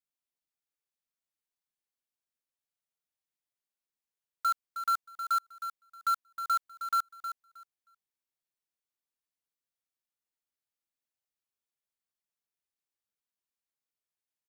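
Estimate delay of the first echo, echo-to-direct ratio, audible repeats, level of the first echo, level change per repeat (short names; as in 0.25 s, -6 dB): 0.314 s, -9.5 dB, 2, -9.5 dB, -15.0 dB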